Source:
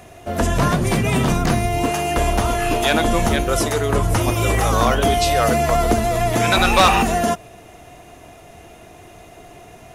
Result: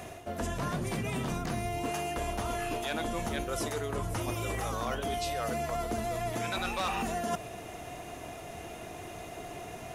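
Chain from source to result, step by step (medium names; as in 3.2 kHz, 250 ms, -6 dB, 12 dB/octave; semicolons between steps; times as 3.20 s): bass shelf 67 Hz -6 dB; reverse; compression 8:1, threshold -31 dBFS, peak gain reduction 20 dB; reverse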